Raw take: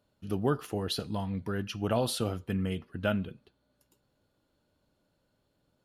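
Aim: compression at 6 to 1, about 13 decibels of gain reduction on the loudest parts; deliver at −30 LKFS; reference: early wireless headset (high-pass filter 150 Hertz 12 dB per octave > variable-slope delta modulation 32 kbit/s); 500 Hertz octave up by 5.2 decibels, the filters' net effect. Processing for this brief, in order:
parametric band 500 Hz +6.5 dB
downward compressor 6 to 1, threshold −34 dBFS
high-pass filter 150 Hz 12 dB per octave
variable-slope delta modulation 32 kbit/s
level +10 dB

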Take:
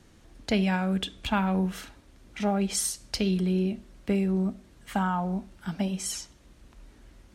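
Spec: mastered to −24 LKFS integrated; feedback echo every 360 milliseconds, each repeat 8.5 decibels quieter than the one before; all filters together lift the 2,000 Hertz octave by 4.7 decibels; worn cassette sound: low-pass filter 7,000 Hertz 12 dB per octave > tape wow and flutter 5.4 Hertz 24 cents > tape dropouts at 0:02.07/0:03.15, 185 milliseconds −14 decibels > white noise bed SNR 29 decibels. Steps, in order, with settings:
low-pass filter 7,000 Hz 12 dB per octave
parametric band 2,000 Hz +6.5 dB
repeating echo 360 ms, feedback 38%, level −8.5 dB
tape wow and flutter 5.4 Hz 24 cents
tape dropouts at 0:02.07/0:03.15, 185 ms −14 dB
white noise bed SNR 29 dB
level +4 dB

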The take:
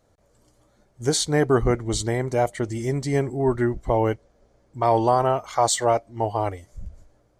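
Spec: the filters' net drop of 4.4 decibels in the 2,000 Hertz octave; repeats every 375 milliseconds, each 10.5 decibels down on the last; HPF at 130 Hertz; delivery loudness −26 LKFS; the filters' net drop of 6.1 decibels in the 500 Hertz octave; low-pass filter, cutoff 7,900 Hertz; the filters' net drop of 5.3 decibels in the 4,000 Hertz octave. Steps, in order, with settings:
high-pass filter 130 Hz
low-pass filter 7,900 Hz
parametric band 500 Hz −8 dB
parametric band 2,000 Hz −4 dB
parametric band 4,000 Hz −5 dB
repeating echo 375 ms, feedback 30%, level −10.5 dB
level +1 dB

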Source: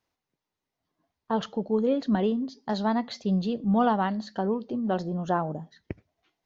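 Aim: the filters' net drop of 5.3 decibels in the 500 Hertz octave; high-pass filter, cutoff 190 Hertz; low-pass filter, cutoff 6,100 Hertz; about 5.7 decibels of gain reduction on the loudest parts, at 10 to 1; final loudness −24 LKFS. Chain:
high-pass filter 190 Hz
low-pass filter 6,100 Hz
parametric band 500 Hz −6.5 dB
downward compressor 10 to 1, threshold −28 dBFS
level +10.5 dB

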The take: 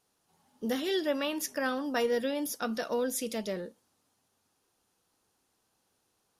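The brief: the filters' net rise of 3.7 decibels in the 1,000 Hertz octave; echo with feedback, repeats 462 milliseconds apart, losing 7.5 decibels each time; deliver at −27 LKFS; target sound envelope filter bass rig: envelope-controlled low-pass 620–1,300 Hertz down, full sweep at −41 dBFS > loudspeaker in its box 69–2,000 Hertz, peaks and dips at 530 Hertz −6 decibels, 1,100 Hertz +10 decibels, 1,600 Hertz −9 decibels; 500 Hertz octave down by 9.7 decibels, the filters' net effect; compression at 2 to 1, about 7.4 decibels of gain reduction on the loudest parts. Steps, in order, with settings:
parametric band 500 Hz −9 dB
parametric band 1,000 Hz +3.5 dB
downward compressor 2 to 1, threshold −42 dBFS
repeating echo 462 ms, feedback 42%, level −7.5 dB
envelope-controlled low-pass 620–1,300 Hz down, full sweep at −41 dBFS
loudspeaker in its box 69–2,000 Hz, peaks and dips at 530 Hz −6 dB, 1,100 Hz +10 dB, 1,600 Hz −9 dB
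level +13 dB

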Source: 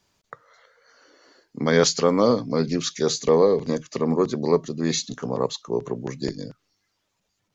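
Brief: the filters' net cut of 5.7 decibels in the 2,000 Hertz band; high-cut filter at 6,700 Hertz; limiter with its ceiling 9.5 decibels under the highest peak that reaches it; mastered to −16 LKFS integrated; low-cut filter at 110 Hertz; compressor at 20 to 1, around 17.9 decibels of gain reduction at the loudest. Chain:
high-pass filter 110 Hz
low-pass filter 6,700 Hz
parametric band 2,000 Hz −7.5 dB
downward compressor 20 to 1, threshold −31 dBFS
level +25 dB
brickwall limiter −5 dBFS

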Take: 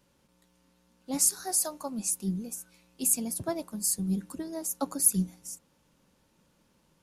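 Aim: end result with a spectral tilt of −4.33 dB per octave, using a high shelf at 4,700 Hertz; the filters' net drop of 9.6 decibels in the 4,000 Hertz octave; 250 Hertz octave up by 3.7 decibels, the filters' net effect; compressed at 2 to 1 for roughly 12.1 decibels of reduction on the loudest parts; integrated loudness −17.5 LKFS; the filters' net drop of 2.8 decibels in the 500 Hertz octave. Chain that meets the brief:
parametric band 250 Hz +6.5 dB
parametric band 500 Hz −6 dB
parametric band 4,000 Hz −7 dB
high-shelf EQ 4,700 Hz −9 dB
downward compressor 2 to 1, threshold −44 dBFS
level +23.5 dB

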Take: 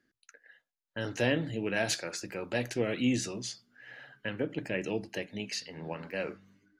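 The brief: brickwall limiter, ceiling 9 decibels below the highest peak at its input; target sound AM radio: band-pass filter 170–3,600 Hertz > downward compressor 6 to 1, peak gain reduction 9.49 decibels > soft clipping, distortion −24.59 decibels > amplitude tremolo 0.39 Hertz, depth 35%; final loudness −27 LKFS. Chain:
brickwall limiter −24 dBFS
band-pass filter 170–3,600 Hz
downward compressor 6 to 1, threshold −39 dBFS
soft clipping −30 dBFS
amplitude tremolo 0.39 Hz, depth 35%
level +19.5 dB

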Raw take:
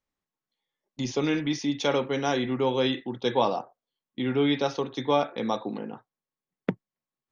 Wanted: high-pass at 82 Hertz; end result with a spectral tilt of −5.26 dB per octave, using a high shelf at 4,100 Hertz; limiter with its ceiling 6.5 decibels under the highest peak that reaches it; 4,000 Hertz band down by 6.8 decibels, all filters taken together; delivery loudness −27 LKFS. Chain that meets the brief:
high-pass filter 82 Hz
parametric band 4,000 Hz −6.5 dB
high-shelf EQ 4,100 Hz −4 dB
level +2 dB
brickwall limiter −15 dBFS

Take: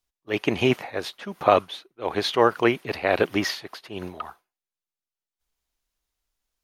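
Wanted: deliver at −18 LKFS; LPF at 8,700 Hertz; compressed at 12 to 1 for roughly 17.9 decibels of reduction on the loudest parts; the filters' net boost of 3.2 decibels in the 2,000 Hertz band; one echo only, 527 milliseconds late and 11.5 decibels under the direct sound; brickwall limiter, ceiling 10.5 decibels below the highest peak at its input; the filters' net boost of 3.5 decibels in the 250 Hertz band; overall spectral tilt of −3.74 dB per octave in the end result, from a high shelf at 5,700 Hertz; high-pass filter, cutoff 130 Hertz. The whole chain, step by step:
high-pass filter 130 Hz
low-pass filter 8,700 Hz
parametric band 250 Hz +5 dB
parametric band 2,000 Hz +3 dB
high-shelf EQ 5,700 Hz +7 dB
downward compressor 12 to 1, threshold −29 dBFS
brickwall limiter −25 dBFS
single-tap delay 527 ms −11.5 dB
level +19.5 dB

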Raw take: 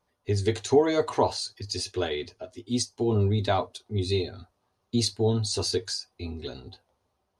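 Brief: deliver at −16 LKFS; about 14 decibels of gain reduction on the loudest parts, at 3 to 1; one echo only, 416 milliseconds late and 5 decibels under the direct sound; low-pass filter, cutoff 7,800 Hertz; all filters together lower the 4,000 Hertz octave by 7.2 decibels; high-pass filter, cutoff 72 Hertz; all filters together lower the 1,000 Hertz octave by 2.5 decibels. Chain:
high-pass filter 72 Hz
low-pass filter 7,800 Hz
parametric band 1,000 Hz −3 dB
parametric band 4,000 Hz −8 dB
downward compressor 3 to 1, threshold −35 dBFS
single-tap delay 416 ms −5 dB
level +21.5 dB

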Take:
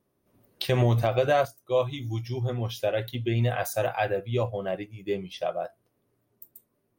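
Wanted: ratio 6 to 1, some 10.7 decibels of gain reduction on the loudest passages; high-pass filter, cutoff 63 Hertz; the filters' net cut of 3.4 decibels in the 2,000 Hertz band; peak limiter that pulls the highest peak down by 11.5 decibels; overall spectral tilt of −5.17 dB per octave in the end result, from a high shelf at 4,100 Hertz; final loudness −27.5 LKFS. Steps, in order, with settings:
high-pass filter 63 Hz
parametric band 2,000 Hz −6 dB
high-shelf EQ 4,100 Hz +5.5 dB
downward compressor 6 to 1, threshold −30 dBFS
level +9 dB
brickwall limiter −16.5 dBFS

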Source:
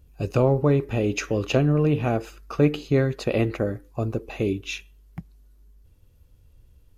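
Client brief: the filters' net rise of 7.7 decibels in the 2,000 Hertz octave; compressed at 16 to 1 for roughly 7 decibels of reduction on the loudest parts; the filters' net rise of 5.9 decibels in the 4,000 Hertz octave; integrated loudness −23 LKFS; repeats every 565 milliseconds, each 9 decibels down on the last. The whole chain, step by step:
parametric band 2,000 Hz +9 dB
parametric band 4,000 Hz +4 dB
downward compressor 16 to 1, threshold −21 dBFS
repeating echo 565 ms, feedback 35%, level −9 dB
level +4.5 dB

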